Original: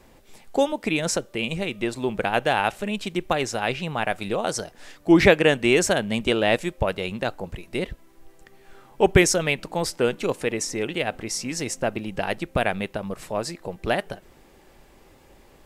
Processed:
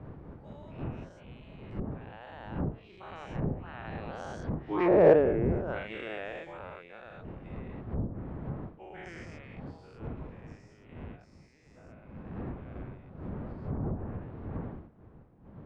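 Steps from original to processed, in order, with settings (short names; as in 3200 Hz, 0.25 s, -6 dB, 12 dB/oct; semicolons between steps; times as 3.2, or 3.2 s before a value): spectral dilation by 0.24 s; Doppler pass-by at 5.11, 19 m/s, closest 1.7 m; wind noise 120 Hz -27 dBFS; LPF 1500 Hz 12 dB/oct; treble ducked by the level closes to 570 Hz, closed at -15 dBFS; tilt +4 dB/oct; in parallel at -11.5 dB: soft clip -25 dBFS, distortion -6 dB; on the sum: gain -1 dB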